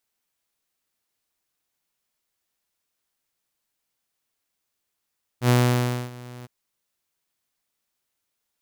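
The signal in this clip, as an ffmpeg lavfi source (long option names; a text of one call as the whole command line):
ffmpeg -f lavfi -i "aevalsrc='0.251*(2*mod(123*t,1)-1)':duration=1.062:sample_rate=44100,afade=type=in:duration=0.08,afade=type=out:start_time=0.08:duration=0.609:silence=0.0708,afade=type=out:start_time=1.04:duration=0.022" out.wav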